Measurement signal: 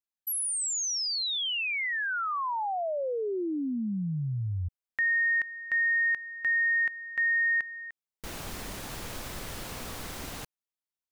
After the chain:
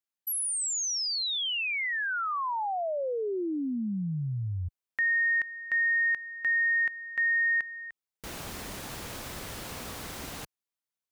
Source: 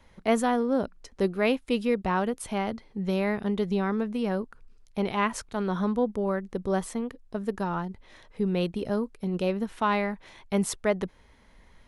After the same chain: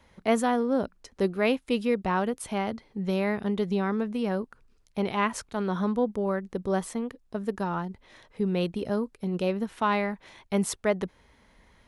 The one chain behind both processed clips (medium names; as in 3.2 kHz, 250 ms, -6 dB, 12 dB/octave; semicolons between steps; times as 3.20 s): high-pass 51 Hz 6 dB/octave